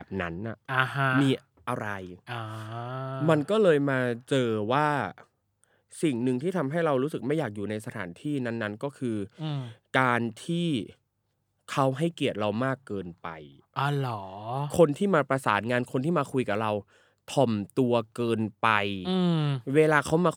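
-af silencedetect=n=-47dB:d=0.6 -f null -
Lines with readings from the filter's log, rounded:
silence_start: 10.92
silence_end: 11.68 | silence_duration: 0.76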